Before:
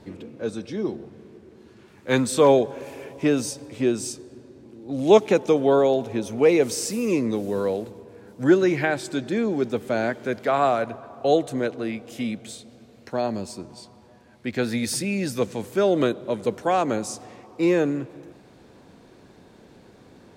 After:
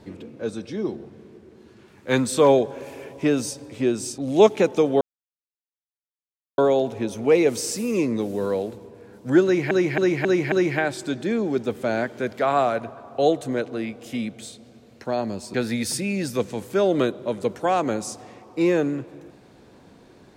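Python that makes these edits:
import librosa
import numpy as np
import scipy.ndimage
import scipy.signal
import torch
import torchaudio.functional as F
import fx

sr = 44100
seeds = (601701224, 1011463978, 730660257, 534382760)

y = fx.edit(x, sr, fx.cut(start_s=4.18, length_s=0.71),
    fx.insert_silence(at_s=5.72, length_s=1.57),
    fx.repeat(start_s=8.58, length_s=0.27, count=5),
    fx.cut(start_s=13.6, length_s=0.96), tone=tone)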